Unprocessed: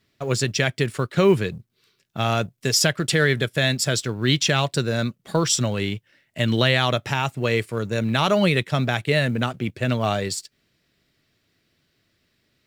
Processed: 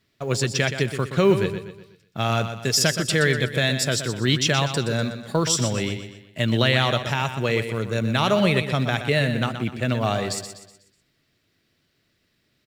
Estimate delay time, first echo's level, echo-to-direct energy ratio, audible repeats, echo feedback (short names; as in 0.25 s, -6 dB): 0.123 s, -9.5 dB, -8.5 dB, 4, 43%